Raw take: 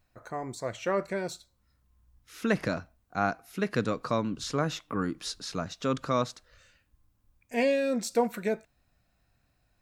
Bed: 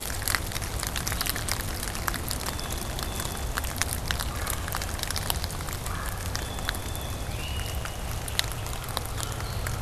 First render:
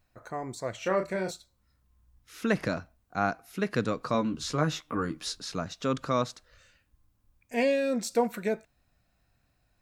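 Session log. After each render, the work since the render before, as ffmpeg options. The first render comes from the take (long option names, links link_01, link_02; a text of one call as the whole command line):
ffmpeg -i in.wav -filter_complex "[0:a]asettb=1/sr,asplit=3[link_01][link_02][link_03];[link_01]atrim=end=0.784[link_04];[link_02]atrim=start=0.78:end=1.31,asetpts=PTS-STARTPTS,afade=type=in:duration=0.004:curve=qsin,afade=type=out:start_time=0.526:duration=0.004:curve=qsin,asplit=2[link_05][link_06];[link_06]adelay=32,volume=-5.5dB[link_07];[link_05][link_07]amix=inputs=2:normalize=0,atrim=end_sample=23373[link_08];[link_03]atrim=start=1.306[link_09];[link_04][link_08]acrossfade=duration=0.004:curve1=hsin:curve2=qsin[link_10];[link_10][link_09]acrossfade=duration=0.004:curve1=qsin:curve2=hsin,asettb=1/sr,asplit=3[link_11][link_12][link_13];[link_11]atrim=end=4.134[link_14];[link_12]atrim=start=4.13:end=5.37,asetpts=PTS-STARTPTS,afade=type=in:duration=0.004:curve=qsin,afade=type=out:start_time=1.236:duration=0.004:curve=qsin,asplit=2[link_15][link_16];[link_16]adelay=13,volume=-5dB[link_17];[link_15][link_17]amix=inputs=2:normalize=0,atrim=end_sample=54684[link_18];[link_13]atrim=start=5.366[link_19];[link_14][link_18]acrossfade=duration=0.004:curve1=hsin:curve2=qsin[link_20];[link_20][link_19]acrossfade=duration=0.004:curve1=qsin:curve2=hsin" out.wav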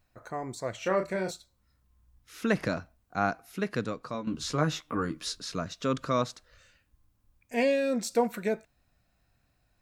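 ffmpeg -i in.wav -filter_complex "[0:a]asettb=1/sr,asplit=3[link_01][link_02][link_03];[link_01]atrim=end=5.114[link_04];[link_02]atrim=start=5.11:end=6.19,asetpts=PTS-STARTPTS,afade=type=in:duration=0.004:curve=qsin,afade=type=out:start_time=1.076:duration=0.004:curve=qsin,asuperstop=centerf=810:order=4:qfactor=5.1[link_05];[link_03]atrim=start=6.186[link_06];[link_04][link_05]acrossfade=duration=0.004:curve1=hsin:curve2=qsin[link_07];[link_07][link_06]acrossfade=duration=0.004:curve1=qsin:curve2=hsin,asplit=2[link_08][link_09];[link_08]atrim=end=4.27,asetpts=PTS-STARTPTS,afade=type=out:start_time=3.45:duration=0.82:silence=0.281838[link_10];[link_09]atrim=start=4.27,asetpts=PTS-STARTPTS,afade=type=in:duration=0.004:curve=hsin:silence=0.281838[link_11];[link_10][link_11]concat=n=2:v=0:a=1" out.wav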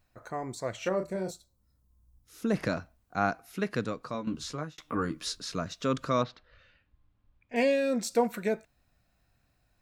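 ffmpeg -i in.wav -filter_complex "[0:a]asettb=1/sr,asplit=3[link_01][link_02][link_03];[link_01]atrim=end=0.894[link_04];[link_02]atrim=start=0.89:end=2.54,asetpts=PTS-STARTPTS,afade=type=in:duration=0.004:curve=qsin,afade=type=out:start_time=1.646:duration=0.004:curve=qsin,equalizer=frequency=2100:width=0.58:gain=-12[link_05];[link_03]atrim=start=2.536[link_06];[link_04][link_05]acrossfade=duration=0.004:curve1=hsin:curve2=qsin[link_07];[link_07][link_06]acrossfade=duration=0.004:curve1=qsin:curve2=hsin,asettb=1/sr,asplit=3[link_08][link_09][link_10];[link_08]atrim=end=6.234[link_11];[link_09]atrim=start=6.23:end=7.56,asetpts=PTS-STARTPTS,afade=type=in:duration=0.004:curve=qsin,afade=type=out:start_time=1.326:duration=0.004:curve=qsin,lowpass=frequency=3800:width=0.5412,lowpass=frequency=3800:width=1.3066[link_12];[link_10]atrim=start=7.556[link_13];[link_11][link_12]acrossfade=duration=0.004:curve1=hsin:curve2=qsin[link_14];[link_14][link_13]acrossfade=duration=0.004:curve1=qsin:curve2=hsin,asplit=2[link_15][link_16];[link_15]atrim=end=4.78,asetpts=PTS-STARTPTS,afade=type=out:start_time=4.27:duration=0.51[link_17];[link_16]atrim=start=4.78,asetpts=PTS-STARTPTS,afade=type=in:duration=0.004:curve=hsin[link_18];[link_17][link_18]concat=n=2:v=0:a=1" out.wav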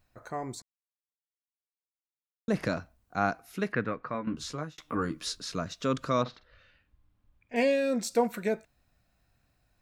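ffmpeg -i in.wav -filter_complex "[0:a]asettb=1/sr,asplit=3[link_01][link_02][link_03];[link_01]atrim=end=3.724[link_04];[link_02]atrim=start=3.72:end=4.37,asetpts=PTS-STARTPTS,afade=type=in:duration=0.004:curve=qsin,afade=type=out:start_time=0.646:duration=0.004:curve=qsin,lowpass=frequency=1900:width_type=q:width=2.3[link_05];[link_03]atrim=start=4.366[link_06];[link_04][link_05]acrossfade=duration=0.004:curve1=hsin:curve2=qsin[link_07];[link_07][link_06]acrossfade=duration=0.004:curve1=qsin:curve2=hsin,asettb=1/sr,asplit=3[link_08][link_09][link_10];[link_08]atrim=end=6.214[link_11];[link_09]atrim=start=6.21:end=7.6,asetpts=PTS-STARTPTS,afade=type=in:duration=0.004:curve=qsin,afade=type=out:start_time=1.386:duration=0.004:curve=qsin,asplit=2[link_12][link_13];[link_13]adelay=47,volume=-13dB[link_14];[link_12][link_14]amix=inputs=2:normalize=0,atrim=end_sample=61299[link_15];[link_10]atrim=start=7.596[link_16];[link_11][link_15]acrossfade=duration=0.004:curve1=hsin:curve2=qsin[link_17];[link_17][link_16]acrossfade=duration=0.004:curve1=qsin:curve2=hsin,asplit=3[link_18][link_19][link_20];[link_18]atrim=end=0.62,asetpts=PTS-STARTPTS,afade=type=out:start_time=0.616:duration=0.004:curve=hsin[link_21];[link_19]atrim=start=0.62:end=2.48,asetpts=PTS-STARTPTS,volume=0[link_22];[link_20]atrim=start=2.48,asetpts=PTS-STARTPTS,afade=type=in:duration=0.004:curve=hsin[link_23];[link_21][link_22][link_23]concat=n=3:v=0:a=1" out.wav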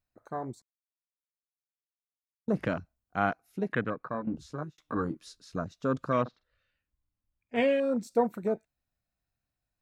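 ffmpeg -i in.wav -af "afwtdn=0.0178,highshelf=frequency=6300:gain=4.5" out.wav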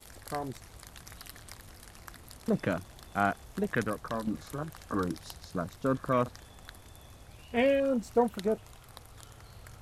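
ffmpeg -i in.wav -i bed.wav -filter_complex "[1:a]volume=-19dB[link_01];[0:a][link_01]amix=inputs=2:normalize=0" out.wav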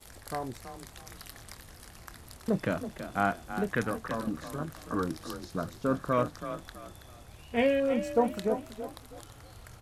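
ffmpeg -i in.wav -filter_complex "[0:a]asplit=2[link_01][link_02];[link_02]adelay=26,volume=-14dB[link_03];[link_01][link_03]amix=inputs=2:normalize=0,asplit=4[link_04][link_05][link_06][link_07];[link_05]adelay=327,afreqshift=31,volume=-10.5dB[link_08];[link_06]adelay=654,afreqshift=62,volume=-20.4dB[link_09];[link_07]adelay=981,afreqshift=93,volume=-30.3dB[link_10];[link_04][link_08][link_09][link_10]amix=inputs=4:normalize=0" out.wav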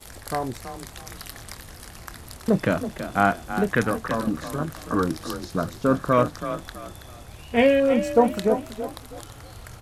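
ffmpeg -i in.wav -af "volume=8dB" out.wav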